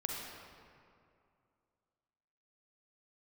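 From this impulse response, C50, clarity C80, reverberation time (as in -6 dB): -0.5 dB, 1.5 dB, 2.4 s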